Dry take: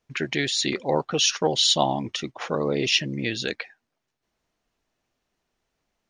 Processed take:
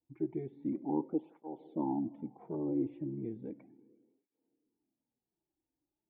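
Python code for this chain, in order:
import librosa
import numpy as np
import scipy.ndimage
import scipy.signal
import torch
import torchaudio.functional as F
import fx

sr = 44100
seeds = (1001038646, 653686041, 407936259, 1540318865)

y = fx.formant_cascade(x, sr, vowel='u')
y = fx.rev_plate(y, sr, seeds[0], rt60_s=2.3, hf_ratio=0.8, predelay_ms=0, drr_db=17.5)
y = fx.flanger_cancel(y, sr, hz=0.35, depth_ms=5.0)
y = F.gain(torch.from_numpy(y), 2.0).numpy()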